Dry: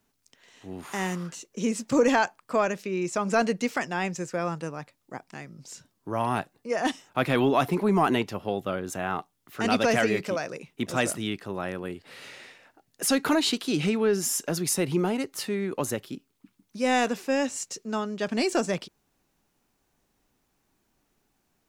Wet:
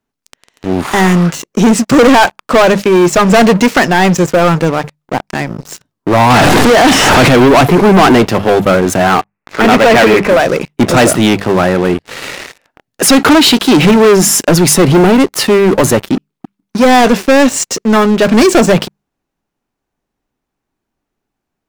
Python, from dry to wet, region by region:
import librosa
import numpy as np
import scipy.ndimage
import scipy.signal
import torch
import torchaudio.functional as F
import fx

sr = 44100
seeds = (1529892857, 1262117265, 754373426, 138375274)

y = fx.chain(x, sr, fx.delta_mod(bps=64000, step_db=-23.0),
    fx.high_shelf(hz=7900.0, db=-5.5), at=(6.3, 7.29))
y = fx.chain(y, sr, fx.peak_eq(hz=68.0, db=-13.5, octaves=2.0),
    fx.resample_bad(factor=8, down='none', up='filtered'), at=(9.14, 10.4))
y = fx.high_shelf(y, sr, hz=3600.0, db=-9.0)
y = fx.hum_notches(y, sr, base_hz=50, count=4)
y = fx.leveller(y, sr, passes=5)
y = y * 10.0 ** (8.0 / 20.0)